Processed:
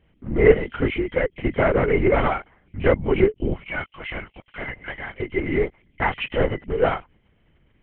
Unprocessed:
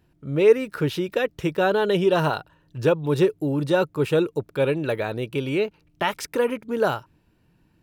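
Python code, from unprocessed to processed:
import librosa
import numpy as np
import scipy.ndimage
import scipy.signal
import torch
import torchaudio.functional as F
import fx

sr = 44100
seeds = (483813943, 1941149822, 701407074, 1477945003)

y = fx.freq_compress(x, sr, knee_hz=1900.0, ratio=4.0)
y = fx.highpass(y, sr, hz=1300.0, slope=12, at=(3.54, 5.21))
y = fx.lpc_vocoder(y, sr, seeds[0], excitation='whisper', order=8)
y = y * librosa.db_to_amplitude(1.5)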